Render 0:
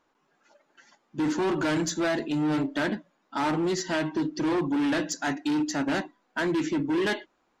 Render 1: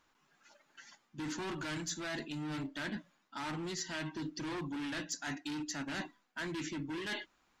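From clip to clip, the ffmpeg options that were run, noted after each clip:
-af "equalizer=f=470:t=o:w=2.5:g=-12,areverse,acompressor=threshold=0.00794:ratio=5,areverse,volume=1.58"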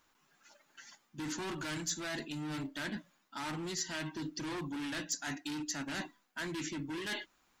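-af "highshelf=f=8600:g=11.5"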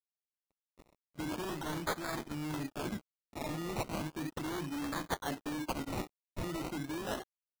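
-af "acrusher=samples=22:mix=1:aa=0.000001:lfo=1:lforange=13.2:lforate=0.36,aeval=exprs='sgn(val(0))*max(abs(val(0))-0.00282,0)':c=same,volume=1.41"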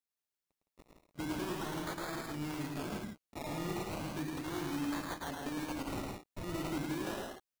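-filter_complex "[0:a]alimiter=level_in=2.82:limit=0.0631:level=0:latency=1:release=155,volume=0.355,asplit=2[s0][s1];[s1]aecho=0:1:107.9|163.3:0.708|0.562[s2];[s0][s2]amix=inputs=2:normalize=0"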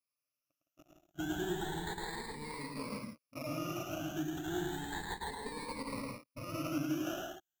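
-af "afftfilt=real='re*pow(10,21/40*sin(2*PI*(0.93*log(max(b,1)*sr/1024/100)/log(2)-(0.32)*(pts-256)/sr)))':imag='im*pow(10,21/40*sin(2*PI*(0.93*log(max(b,1)*sr/1024/100)/log(2)-(0.32)*(pts-256)/sr)))':win_size=1024:overlap=0.75,volume=0.562"

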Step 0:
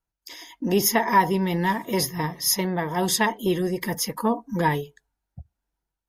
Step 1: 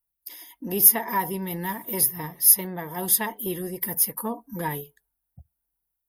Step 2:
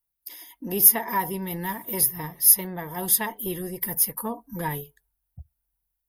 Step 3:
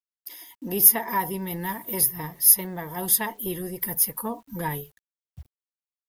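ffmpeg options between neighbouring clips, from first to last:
-af "aexciter=amount=7.5:drive=7.6:freq=9400,volume=0.422"
-af "asubboost=boost=2.5:cutoff=130"
-af "acrusher=bits=9:mix=0:aa=0.000001"

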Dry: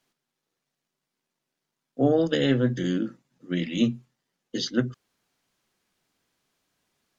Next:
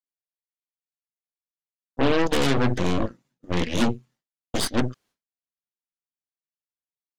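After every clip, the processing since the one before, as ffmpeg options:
-af "asoftclip=type=tanh:threshold=0.237,aeval=exprs='0.211*(cos(1*acos(clip(val(0)/0.211,-1,1)))-cos(1*PI/2))+0.0668*(cos(8*acos(clip(val(0)/0.211,-1,1)))-cos(8*PI/2))':c=same,agate=range=0.0224:threshold=0.00316:ratio=3:detection=peak"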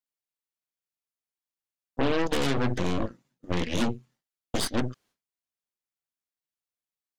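-af "acompressor=threshold=0.0708:ratio=2.5"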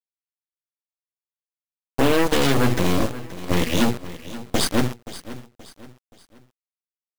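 -af "acrusher=bits=5:mix=0:aa=0.000001,aecho=1:1:526|1052|1578:0.168|0.0655|0.0255,volume=2.24"

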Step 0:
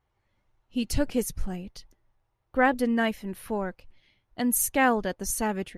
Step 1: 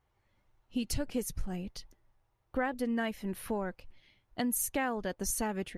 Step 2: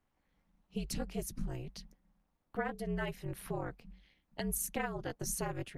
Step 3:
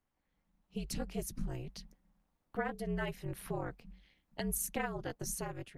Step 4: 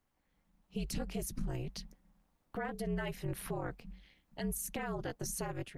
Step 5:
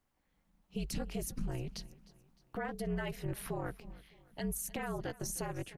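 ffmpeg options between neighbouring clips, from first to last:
-af "acompressor=threshold=0.0316:ratio=4"
-af "tremolo=f=240:d=0.947,afreqshift=-52"
-af "dynaudnorm=f=210:g=7:m=1.78,volume=0.562"
-af "alimiter=level_in=2.51:limit=0.0631:level=0:latency=1:release=51,volume=0.398,volume=1.58"
-af "aecho=1:1:306|612|918:0.0944|0.0425|0.0191"

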